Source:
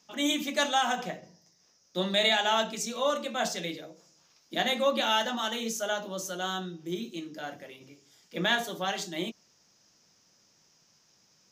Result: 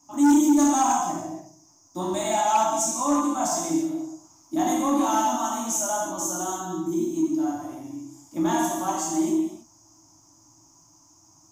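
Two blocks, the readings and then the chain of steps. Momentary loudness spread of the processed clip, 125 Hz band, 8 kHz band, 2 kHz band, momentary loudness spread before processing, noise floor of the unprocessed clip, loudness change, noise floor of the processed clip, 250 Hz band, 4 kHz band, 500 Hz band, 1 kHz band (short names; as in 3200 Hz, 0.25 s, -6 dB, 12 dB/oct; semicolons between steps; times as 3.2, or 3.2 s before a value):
15 LU, +3.0 dB, +11.5 dB, -7.0 dB, 15 LU, -66 dBFS, +5.5 dB, -57 dBFS, +13.0 dB, -9.5 dB, +2.0 dB, +7.5 dB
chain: EQ curve 120 Hz 0 dB, 220 Hz -16 dB, 310 Hz +10 dB, 450 Hz -29 dB, 660 Hz -5 dB, 1000 Hz 0 dB, 1600 Hz -22 dB, 3900 Hz -26 dB, 6700 Hz -1 dB, 13000 Hz -7 dB; non-linear reverb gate 0.36 s falling, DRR -4.5 dB; dynamic EQ 690 Hz, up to -4 dB, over -40 dBFS, Q 0.8; in parallel at -8 dB: sine folder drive 8 dB, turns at -14 dBFS; on the sum: gain +1.5 dB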